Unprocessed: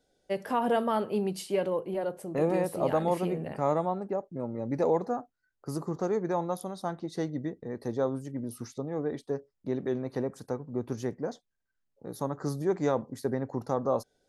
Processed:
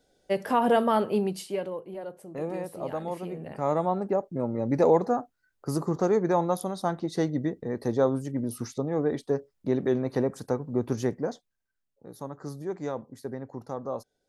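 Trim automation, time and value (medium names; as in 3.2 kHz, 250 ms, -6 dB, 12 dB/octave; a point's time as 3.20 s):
1.11 s +4.5 dB
1.80 s -6 dB
3.26 s -6 dB
4.01 s +5.5 dB
11.06 s +5.5 dB
12.14 s -5.5 dB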